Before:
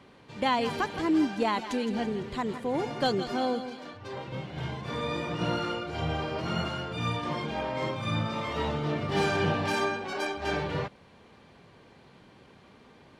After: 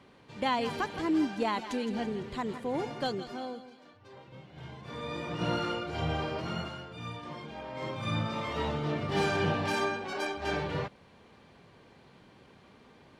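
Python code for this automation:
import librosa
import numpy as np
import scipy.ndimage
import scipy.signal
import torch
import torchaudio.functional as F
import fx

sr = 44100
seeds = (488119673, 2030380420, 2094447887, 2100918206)

y = fx.gain(x, sr, db=fx.line((2.82, -3.0), (3.69, -13.0), (4.44, -13.0), (5.53, -1.0), (6.27, -1.0), (6.91, -10.0), (7.63, -10.0), (8.04, -2.0)))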